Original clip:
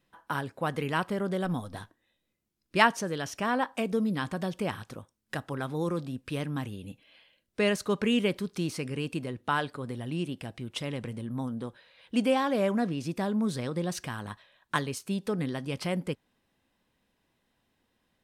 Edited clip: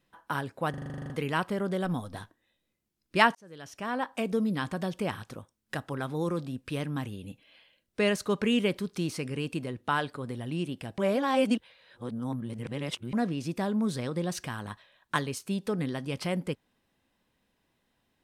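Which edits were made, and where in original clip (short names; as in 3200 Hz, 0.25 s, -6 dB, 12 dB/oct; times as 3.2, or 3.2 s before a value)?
0.7 stutter 0.04 s, 11 plays
2.95–3.88 fade in
10.58–12.73 reverse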